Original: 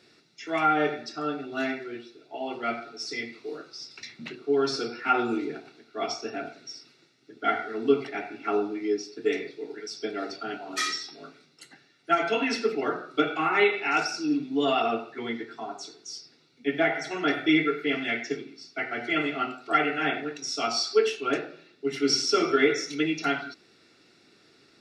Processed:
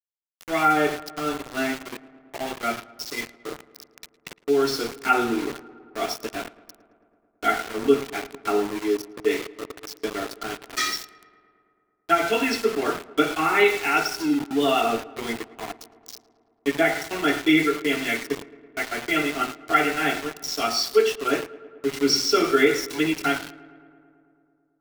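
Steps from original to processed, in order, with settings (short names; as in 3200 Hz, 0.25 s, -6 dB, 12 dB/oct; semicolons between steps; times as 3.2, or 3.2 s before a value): sample gate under -32.5 dBFS; darkening echo 0.11 s, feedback 77%, low-pass 3000 Hz, level -20.5 dB; gain +3.5 dB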